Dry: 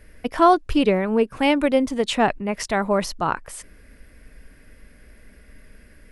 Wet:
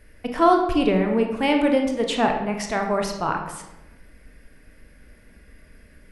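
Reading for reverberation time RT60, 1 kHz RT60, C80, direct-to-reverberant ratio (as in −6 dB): 0.95 s, 0.90 s, 8.5 dB, 2.5 dB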